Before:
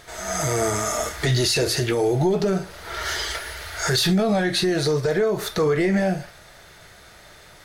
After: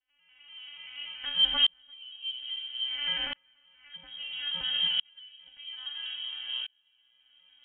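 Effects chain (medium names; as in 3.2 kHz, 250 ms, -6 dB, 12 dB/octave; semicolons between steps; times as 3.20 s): vocoder on a broken chord minor triad, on B3, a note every 96 ms; hum notches 60/120/180/240/300 Hz; 4.61–5.14 s: compressor with a negative ratio -26 dBFS; reverberation RT60 5.3 s, pre-delay 54 ms, DRR 6.5 dB; frequency inversion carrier 3.5 kHz; sawtooth tremolo in dB swelling 0.6 Hz, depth 36 dB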